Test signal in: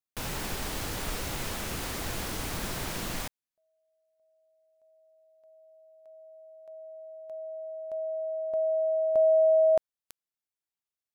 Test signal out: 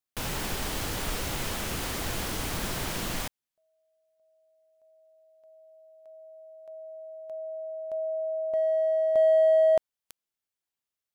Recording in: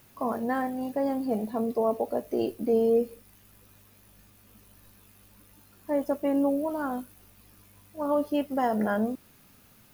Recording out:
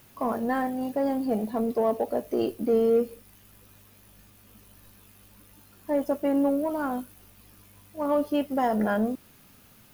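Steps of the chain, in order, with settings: bell 3100 Hz +2 dB 0.22 oct; in parallel at -11 dB: hard clip -26.5 dBFS

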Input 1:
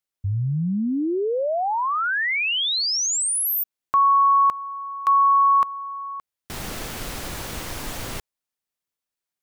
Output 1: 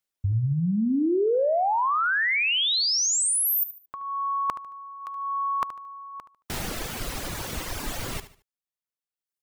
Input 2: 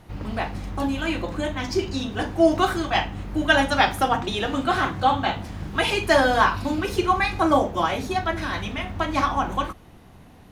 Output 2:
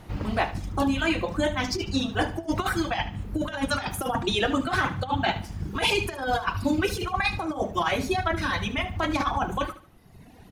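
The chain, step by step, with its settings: reverb removal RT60 1.3 s; negative-ratio compressor -24 dBFS, ratio -0.5; feedback echo 74 ms, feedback 31%, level -13.5 dB

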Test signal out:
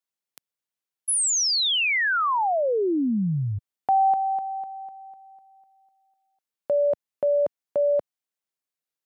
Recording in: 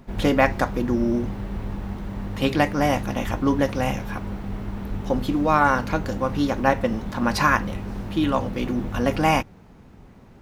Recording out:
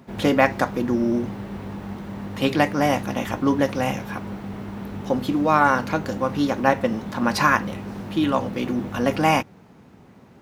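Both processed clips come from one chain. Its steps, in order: HPF 120 Hz 12 dB/oct; gain +1 dB

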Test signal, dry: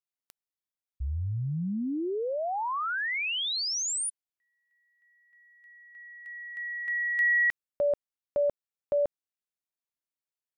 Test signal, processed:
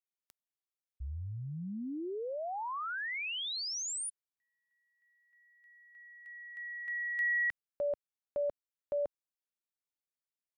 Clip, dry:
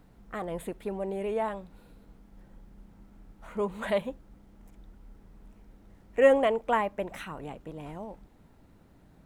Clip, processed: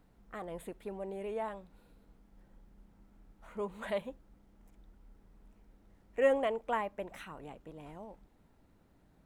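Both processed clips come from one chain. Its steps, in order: bell 130 Hz -2.5 dB 1.8 oct; gain -7 dB

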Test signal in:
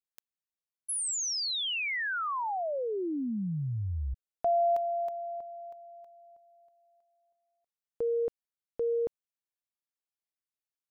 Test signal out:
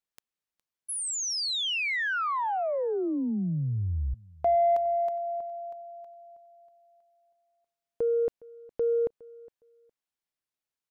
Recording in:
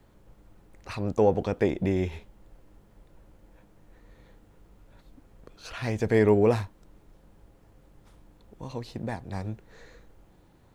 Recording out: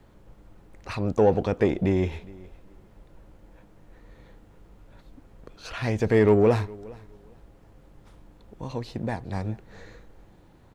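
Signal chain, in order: high shelf 6800 Hz -6 dB; in parallel at -5 dB: soft clip -22.5 dBFS; on the sum: feedback echo 0.412 s, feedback 20%, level -22.5 dB

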